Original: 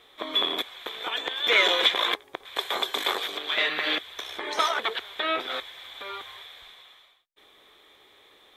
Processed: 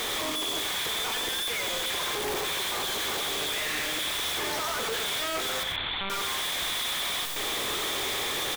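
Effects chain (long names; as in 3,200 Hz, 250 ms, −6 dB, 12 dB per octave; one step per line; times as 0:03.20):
sign of each sample alone
0:05.63–0:06.10: linear-prediction vocoder at 8 kHz pitch kept
loudspeakers that aren't time-aligned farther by 31 metres −8 dB, 44 metres −12 dB
level −1.5 dB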